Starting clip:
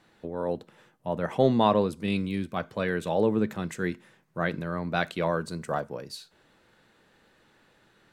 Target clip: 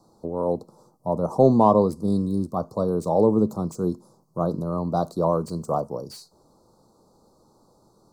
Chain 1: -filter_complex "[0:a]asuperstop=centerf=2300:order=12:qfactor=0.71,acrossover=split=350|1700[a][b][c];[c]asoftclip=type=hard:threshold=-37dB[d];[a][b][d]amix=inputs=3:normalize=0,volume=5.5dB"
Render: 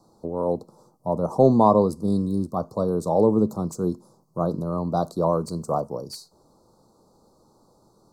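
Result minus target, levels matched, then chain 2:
hard clip: distortion -10 dB
-filter_complex "[0:a]asuperstop=centerf=2300:order=12:qfactor=0.71,acrossover=split=350|1700[a][b][c];[c]asoftclip=type=hard:threshold=-45dB[d];[a][b][d]amix=inputs=3:normalize=0,volume=5.5dB"

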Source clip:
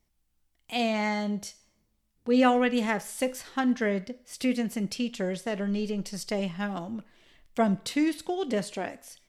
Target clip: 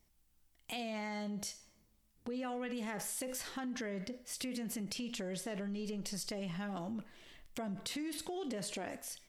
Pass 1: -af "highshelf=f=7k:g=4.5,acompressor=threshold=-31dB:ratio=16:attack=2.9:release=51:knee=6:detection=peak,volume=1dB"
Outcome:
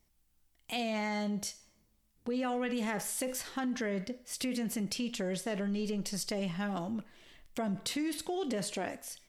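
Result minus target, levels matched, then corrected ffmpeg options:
compressor: peak gain reduction -6.5 dB
-af "highshelf=f=7k:g=4.5,acompressor=threshold=-38dB:ratio=16:attack=2.9:release=51:knee=6:detection=peak,volume=1dB"

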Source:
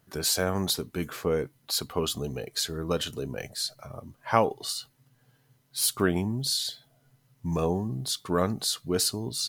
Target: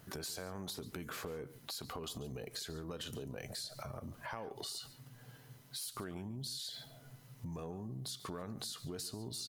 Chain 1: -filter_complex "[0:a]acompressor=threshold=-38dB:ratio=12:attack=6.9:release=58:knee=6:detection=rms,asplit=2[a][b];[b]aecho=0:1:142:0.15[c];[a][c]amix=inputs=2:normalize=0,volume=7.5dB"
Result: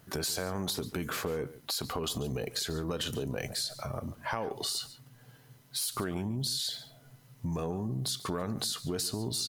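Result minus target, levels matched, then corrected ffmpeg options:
compressor: peak gain reduction -10 dB
-filter_complex "[0:a]acompressor=threshold=-49dB:ratio=12:attack=6.9:release=58:knee=6:detection=rms,asplit=2[a][b];[b]aecho=0:1:142:0.15[c];[a][c]amix=inputs=2:normalize=0,volume=7.5dB"

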